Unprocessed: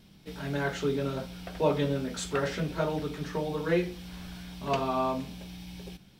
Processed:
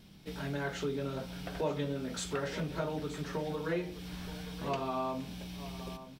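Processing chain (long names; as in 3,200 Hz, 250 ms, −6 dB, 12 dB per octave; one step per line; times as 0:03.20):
downward compressor 2 to 1, threshold −36 dBFS, peak gain reduction 9 dB
on a send: single-tap delay 924 ms −14 dB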